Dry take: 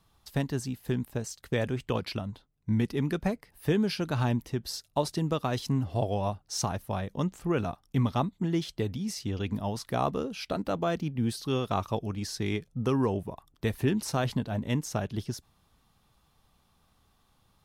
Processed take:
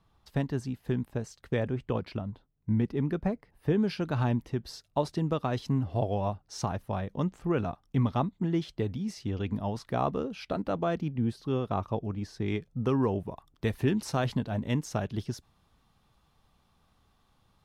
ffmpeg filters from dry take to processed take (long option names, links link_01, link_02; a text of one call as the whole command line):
ffmpeg -i in.wav -af "asetnsamples=nb_out_samples=441:pad=0,asendcmd='1.6 lowpass f 1100;3.78 lowpass f 2300;11.18 lowpass f 1100;12.48 lowpass f 2600;13.26 lowpass f 4900',lowpass=frequency=2100:poles=1" out.wav